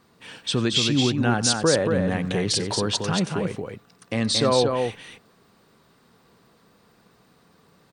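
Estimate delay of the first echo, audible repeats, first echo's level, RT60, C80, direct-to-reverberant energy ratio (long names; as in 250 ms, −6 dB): 92 ms, 2, −19.5 dB, no reverb audible, no reverb audible, no reverb audible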